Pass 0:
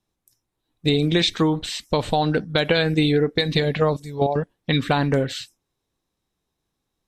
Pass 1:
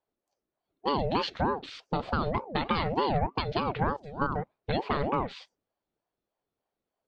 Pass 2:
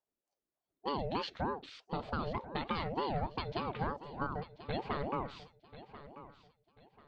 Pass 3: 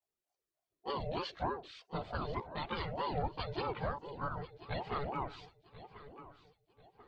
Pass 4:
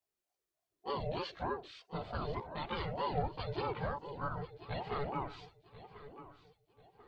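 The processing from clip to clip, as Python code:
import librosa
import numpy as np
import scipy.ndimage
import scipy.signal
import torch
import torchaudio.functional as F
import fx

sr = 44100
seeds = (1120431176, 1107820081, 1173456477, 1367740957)

y1 = fx.air_absorb(x, sr, metres=220.0)
y1 = fx.ring_lfo(y1, sr, carrier_hz=500.0, swing_pct=45, hz=3.3)
y1 = y1 * librosa.db_to_amplitude(-5.0)
y2 = fx.echo_feedback(y1, sr, ms=1039, feedback_pct=30, wet_db=-15)
y2 = y2 * librosa.db_to_amplitude(-8.0)
y3 = fx.low_shelf(y2, sr, hz=120.0, db=-6.5)
y3 = fx.chorus_voices(y3, sr, voices=6, hz=0.57, base_ms=18, depth_ms=1.6, mix_pct=70)
y3 = y3 * librosa.db_to_amplitude(1.5)
y4 = fx.hpss(y3, sr, part='percussive', gain_db=-7)
y4 = y4 * librosa.db_to_amplitude(3.5)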